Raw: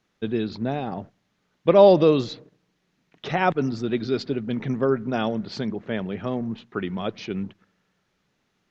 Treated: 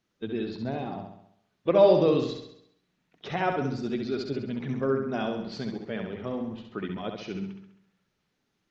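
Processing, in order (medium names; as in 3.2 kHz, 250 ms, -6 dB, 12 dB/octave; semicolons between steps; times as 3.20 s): coarse spectral quantiser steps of 15 dB; flutter echo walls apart 11.5 m, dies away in 0.72 s; trim -6 dB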